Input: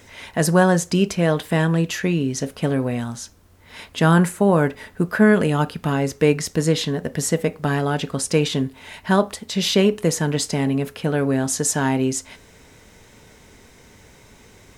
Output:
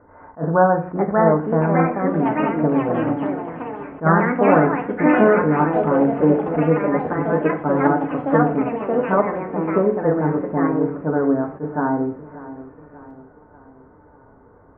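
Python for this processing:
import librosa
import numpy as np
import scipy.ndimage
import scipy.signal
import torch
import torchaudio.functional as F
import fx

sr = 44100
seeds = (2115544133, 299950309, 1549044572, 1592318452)

p1 = scipy.signal.sosfilt(scipy.signal.butter(8, 1400.0, 'lowpass', fs=sr, output='sos'), x)
p2 = fx.low_shelf(p1, sr, hz=320.0, db=-9.0)
p3 = fx.echo_pitch(p2, sr, ms=679, semitones=3, count=3, db_per_echo=-3.0)
p4 = p3 + fx.echo_feedback(p3, sr, ms=589, feedback_pct=51, wet_db=-17.0, dry=0)
p5 = fx.rev_fdn(p4, sr, rt60_s=0.5, lf_ratio=1.2, hf_ratio=0.95, size_ms=20.0, drr_db=4.5)
p6 = fx.attack_slew(p5, sr, db_per_s=320.0)
y = p6 * 10.0 ** (2.5 / 20.0)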